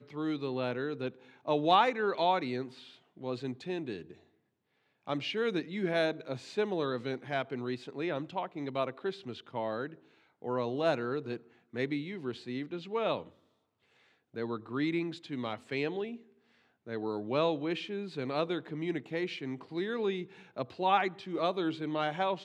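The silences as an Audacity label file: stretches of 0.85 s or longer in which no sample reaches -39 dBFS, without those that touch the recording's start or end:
4.110000	5.070000	silence
13.230000	14.360000	silence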